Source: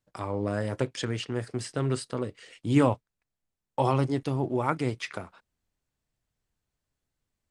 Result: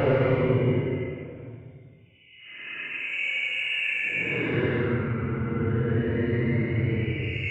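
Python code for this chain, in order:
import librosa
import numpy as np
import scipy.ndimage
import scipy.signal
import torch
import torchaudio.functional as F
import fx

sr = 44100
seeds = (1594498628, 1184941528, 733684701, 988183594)

y = fx.freq_compress(x, sr, knee_hz=2000.0, ratio=4.0)
y = 10.0 ** (-19.5 / 20.0) * np.tanh(y / 10.0 ** (-19.5 / 20.0))
y = fx.paulstretch(y, sr, seeds[0], factor=20.0, window_s=0.05, from_s=0.81)
y = y * 10.0 ** (5.0 / 20.0)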